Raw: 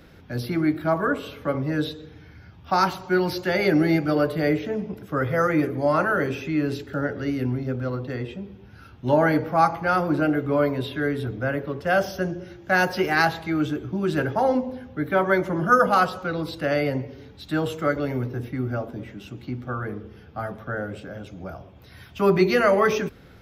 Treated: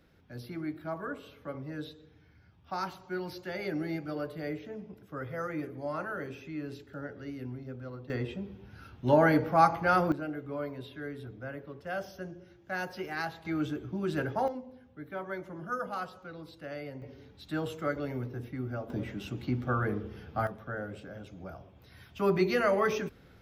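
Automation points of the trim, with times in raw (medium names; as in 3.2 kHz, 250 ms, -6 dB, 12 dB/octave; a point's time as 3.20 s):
-14.5 dB
from 8.10 s -3.5 dB
from 10.12 s -15 dB
from 13.45 s -8 dB
from 14.48 s -17.5 dB
from 17.02 s -9 dB
from 18.90 s 0 dB
from 20.47 s -8 dB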